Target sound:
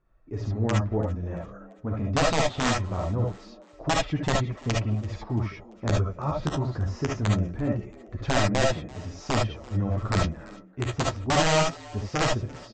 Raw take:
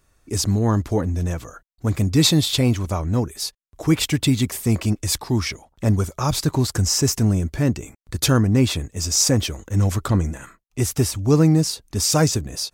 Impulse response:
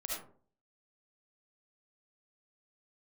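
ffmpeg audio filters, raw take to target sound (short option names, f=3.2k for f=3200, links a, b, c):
-filter_complex "[0:a]lowpass=1.5k,aresample=16000,aeval=exprs='(mod(2.99*val(0)+1,2)-1)/2.99':c=same,aresample=44100,flanger=delay=5.6:depth=8.5:regen=-33:speed=0.23:shape=triangular,asplit=4[a][b][c][d];[b]adelay=339,afreqshift=110,volume=-22.5dB[e];[c]adelay=678,afreqshift=220,volume=-29.2dB[f];[d]adelay=1017,afreqshift=330,volume=-36dB[g];[a][e][f][g]amix=inputs=4:normalize=0[h];[1:a]atrim=start_sample=2205,atrim=end_sample=3528[i];[h][i]afir=irnorm=-1:irlink=0"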